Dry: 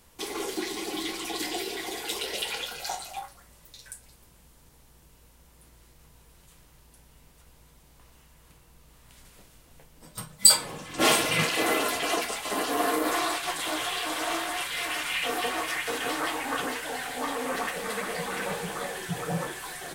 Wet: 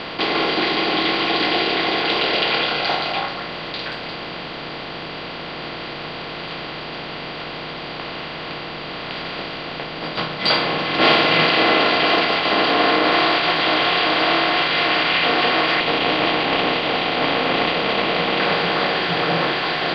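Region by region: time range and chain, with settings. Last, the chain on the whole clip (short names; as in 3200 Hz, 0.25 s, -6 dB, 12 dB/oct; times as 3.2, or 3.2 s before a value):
15.8–18.4 minimum comb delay 0.32 ms + LPF 3400 Hz 6 dB/oct
whole clip: per-bin compression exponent 0.4; steep low-pass 4300 Hz 48 dB/oct; low shelf 130 Hz -10 dB; gain +5 dB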